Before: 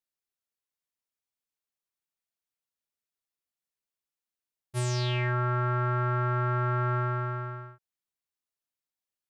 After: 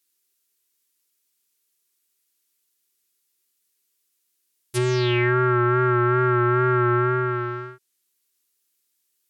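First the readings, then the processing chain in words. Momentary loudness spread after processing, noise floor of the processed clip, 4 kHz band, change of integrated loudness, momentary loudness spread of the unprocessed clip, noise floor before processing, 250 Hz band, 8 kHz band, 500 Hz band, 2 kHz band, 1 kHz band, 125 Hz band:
11 LU, -73 dBFS, +5.5 dB, +8.0 dB, 8 LU, under -85 dBFS, no reading, +2.5 dB, +13.5 dB, +9.5 dB, +8.0 dB, +4.0 dB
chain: resonant low shelf 490 Hz +7 dB, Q 3; low-pass that closes with the level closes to 2.1 kHz, closed at -20 dBFS; tilt EQ +4 dB/octave; wow and flutter 36 cents; trim +8.5 dB

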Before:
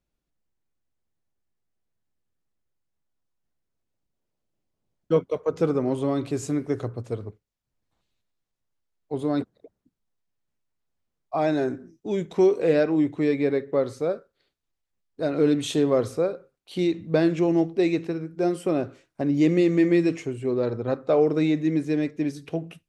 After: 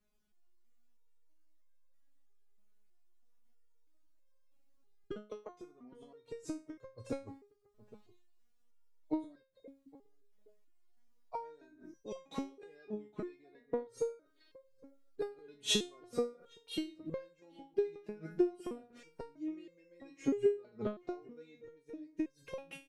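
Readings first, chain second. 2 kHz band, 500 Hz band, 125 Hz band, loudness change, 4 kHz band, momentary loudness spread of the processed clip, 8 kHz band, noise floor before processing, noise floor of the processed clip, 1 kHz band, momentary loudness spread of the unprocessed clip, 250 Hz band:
-16.5 dB, -16.0 dB, -24.0 dB, -15.5 dB, -2.5 dB, 23 LU, -4.0 dB, -82 dBFS, -71 dBFS, -16.0 dB, 12 LU, -18.0 dB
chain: inverted gate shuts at -19 dBFS, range -31 dB; echo from a far wall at 140 m, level -19 dB; resonator arpeggio 3.1 Hz 210–530 Hz; trim +15 dB

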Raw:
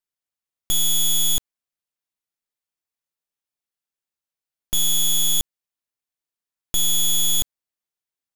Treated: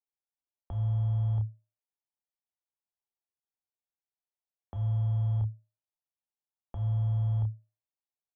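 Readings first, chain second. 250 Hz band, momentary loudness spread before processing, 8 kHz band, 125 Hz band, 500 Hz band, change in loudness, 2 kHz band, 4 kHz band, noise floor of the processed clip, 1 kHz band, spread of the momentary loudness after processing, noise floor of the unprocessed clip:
-6.5 dB, 7 LU, under -40 dB, +14.5 dB, -3.5 dB, -11.5 dB, under -25 dB, under -40 dB, under -85 dBFS, no reading, 10 LU, under -85 dBFS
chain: doubling 30 ms -10 dB; waveshaping leveller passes 1; frequency shift -110 Hz; four-pole ladder low-pass 1 kHz, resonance 50%; de-hum 307.5 Hz, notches 2

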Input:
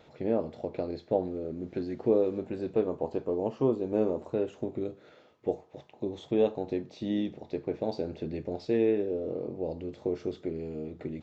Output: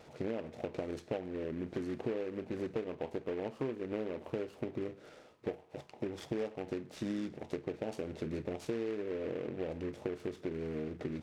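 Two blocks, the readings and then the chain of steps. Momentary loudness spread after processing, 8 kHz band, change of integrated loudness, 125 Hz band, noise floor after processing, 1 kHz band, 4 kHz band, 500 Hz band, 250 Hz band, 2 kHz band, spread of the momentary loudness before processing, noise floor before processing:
5 LU, no reading, -8.0 dB, -4.5 dB, -58 dBFS, -7.0 dB, -3.0 dB, -8.5 dB, -7.0 dB, +1.5 dB, 10 LU, -58 dBFS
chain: compression 6:1, threshold -35 dBFS, peak gain reduction 15 dB; delay time shaken by noise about 1.6 kHz, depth 0.048 ms; trim +1 dB

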